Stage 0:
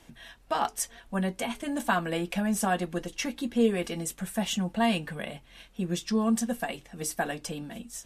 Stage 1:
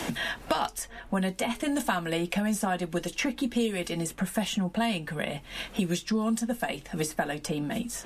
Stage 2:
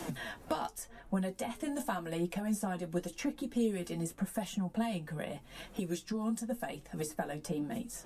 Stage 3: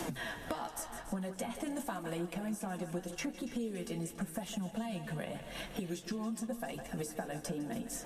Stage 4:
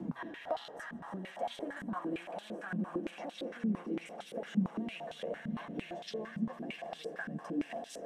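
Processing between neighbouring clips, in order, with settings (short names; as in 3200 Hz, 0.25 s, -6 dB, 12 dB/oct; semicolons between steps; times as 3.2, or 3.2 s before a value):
three-band squash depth 100%
bell 2800 Hz -8 dB 2.2 oct; flange 0.88 Hz, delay 5.3 ms, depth 7.9 ms, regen +33%; gain -2 dB
thinning echo 0.156 s, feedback 65%, high-pass 350 Hz, level -13 dB; compressor 4:1, threshold -41 dBFS, peak gain reduction 12.5 dB; warbling echo 0.284 s, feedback 50%, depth 89 cents, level -15.5 dB; gain +4.5 dB
swelling echo 83 ms, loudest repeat 8, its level -15.5 dB; stepped band-pass 8.8 Hz 210–3600 Hz; gain +9 dB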